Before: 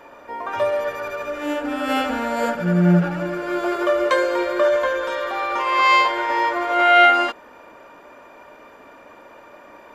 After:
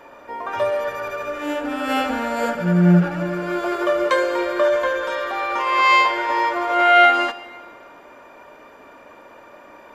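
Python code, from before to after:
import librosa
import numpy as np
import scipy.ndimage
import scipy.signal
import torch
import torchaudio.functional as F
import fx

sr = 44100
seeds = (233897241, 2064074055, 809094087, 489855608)

y = fx.rev_plate(x, sr, seeds[0], rt60_s=1.8, hf_ratio=0.9, predelay_ms=0, drr_db=14.0)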